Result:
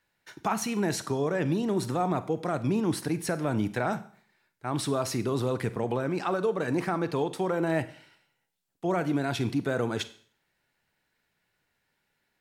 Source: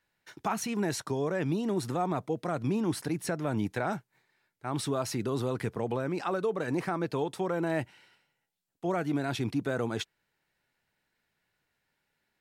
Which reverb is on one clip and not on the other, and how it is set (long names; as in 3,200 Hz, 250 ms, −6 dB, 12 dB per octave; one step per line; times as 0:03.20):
four-comb reverb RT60 0.5 s, combs from 33 ms, DRR 13 dB
level +2.5 dB